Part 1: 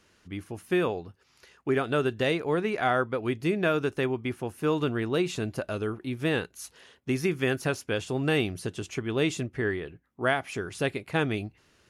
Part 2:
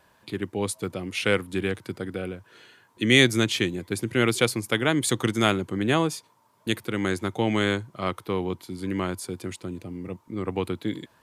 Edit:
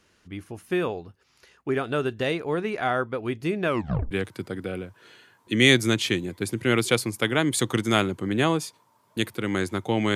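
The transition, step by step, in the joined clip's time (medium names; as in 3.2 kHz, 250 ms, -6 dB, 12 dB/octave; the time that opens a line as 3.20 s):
part 1
3.67 s: tape stop 0.44 s
4.11 s: go over to part 2 from 1.61 s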